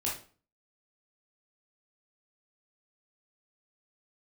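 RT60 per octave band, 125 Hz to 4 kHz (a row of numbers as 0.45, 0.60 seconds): 0.50, 0.50, 0.40, 0.40, 0.35, 0.35 seconds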